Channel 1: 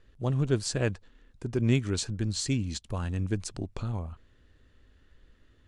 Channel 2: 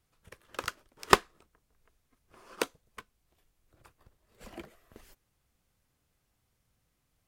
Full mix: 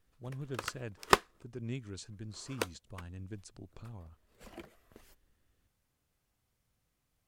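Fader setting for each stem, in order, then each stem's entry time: -15.0, -3.5 dB; 0.00, 0.00 s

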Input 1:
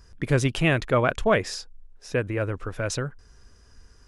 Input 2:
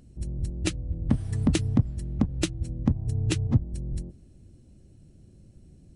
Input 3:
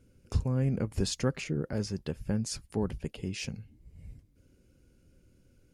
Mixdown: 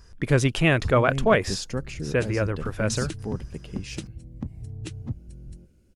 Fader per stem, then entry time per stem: +1.5, -10.0, -1.0 dB; 0.00, 1.55, 0.50 s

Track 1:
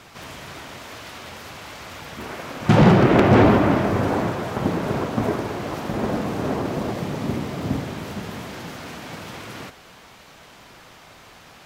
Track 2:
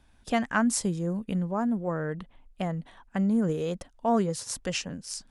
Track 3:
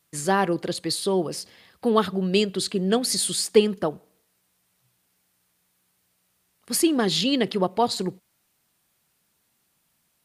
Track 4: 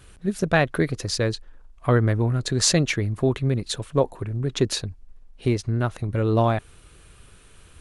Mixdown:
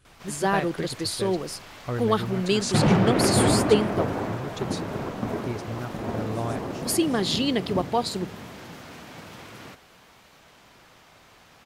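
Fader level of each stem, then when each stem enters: -7.0, -17.0, -2.5, -11.0 dB; 0.05, 2.00, 0.15, 0.00 s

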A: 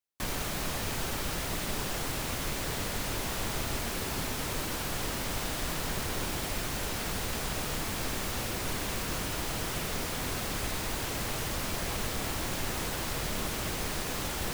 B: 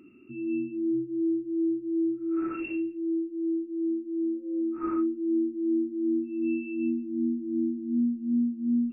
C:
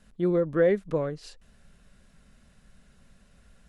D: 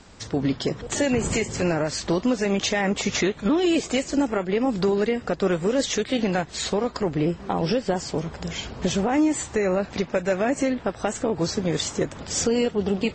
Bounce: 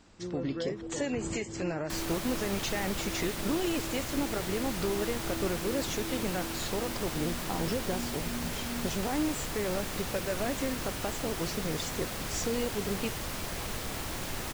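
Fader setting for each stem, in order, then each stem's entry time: -3.0, -14.5, -14.5, -10.5 dB; 1.70, 0.00, 0.00, 0.00 s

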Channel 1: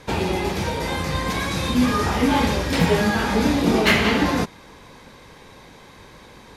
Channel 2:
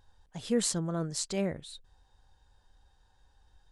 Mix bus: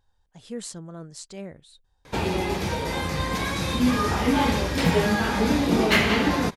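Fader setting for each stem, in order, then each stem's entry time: -2.5, -6.5 dB; 2.05, 0.00 s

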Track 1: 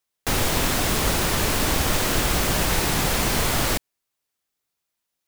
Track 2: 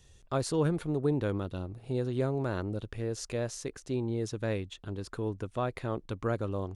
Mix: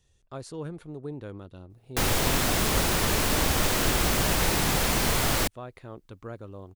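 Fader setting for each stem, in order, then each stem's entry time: -2.5, -8.5 dB; 1.70, 0.00 s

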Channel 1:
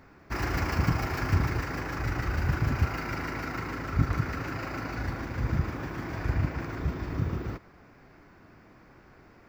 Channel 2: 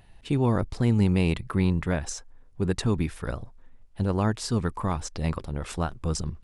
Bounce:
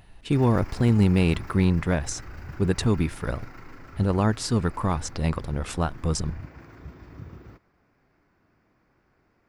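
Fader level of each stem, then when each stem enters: -12.0, +2.5 dB; 0.00, 0.00 s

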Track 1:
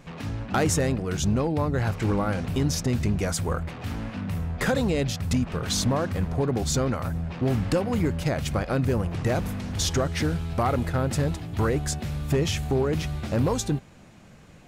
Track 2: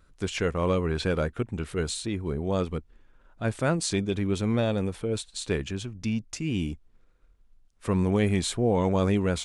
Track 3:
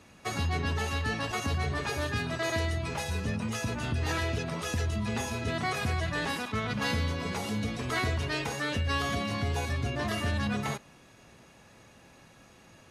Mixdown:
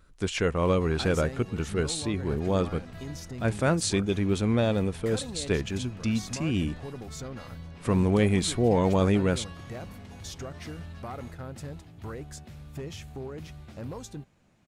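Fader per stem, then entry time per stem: -14.5, +1.0, -19.0 dB; 0.45, 0.00, 0.55 s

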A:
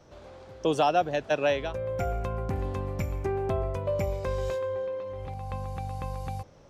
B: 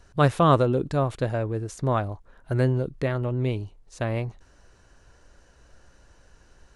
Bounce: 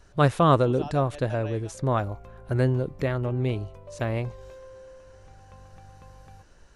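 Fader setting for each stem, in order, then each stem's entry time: -15.0, -0.5 dB; 0.00, 0.00 s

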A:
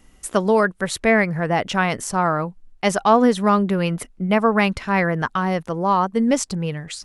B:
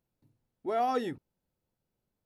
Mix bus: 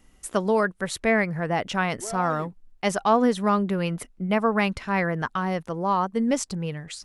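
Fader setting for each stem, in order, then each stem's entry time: -5.0, -6.5 dB; 0.00, 1.35 s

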